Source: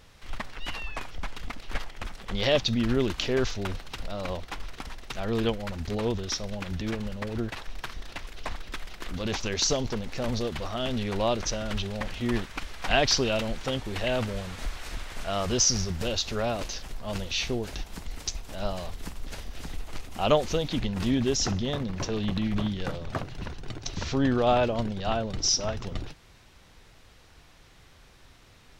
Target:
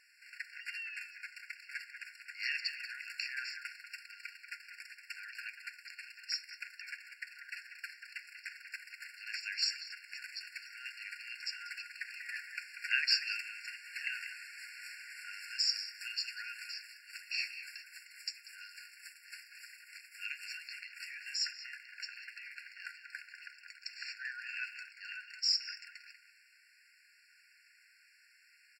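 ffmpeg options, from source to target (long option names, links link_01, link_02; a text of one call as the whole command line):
ffmpeg -i in.wav -filter_complex "[0:a]flanger=delay=5.8:depth=9.7:regen=-88:speed=0.16:shape=triangular,asplit=2[link_01][link_02];[link_02]adelay=190,highpass=300,lowpass=3400,asoftclip=type=hard:threshold=-20.5dB,volume=-8dB[link_03];[link_01][link_03]amix=inputs=2:normalize=0,afftfilt=real='re*eq(mod(floor(b*sr/1024/1400),2),1)':imag='im*eq(mod(floor(b*sr/1024/1400),2),1)':win_size=1024:overlap=0.75,volume=1.5dB" out.wav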